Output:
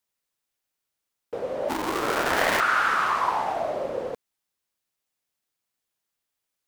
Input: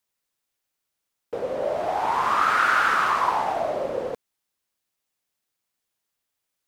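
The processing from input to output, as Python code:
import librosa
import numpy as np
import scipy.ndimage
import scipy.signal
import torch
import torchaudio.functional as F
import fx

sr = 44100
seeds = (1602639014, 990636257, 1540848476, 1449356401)

y = fx.cycle_switch(x, sr, every=2, mode='inverted', at=(1.68, 2.59), fade=0.02)
y = y * 10.0 ** (-2.0 / 20.0)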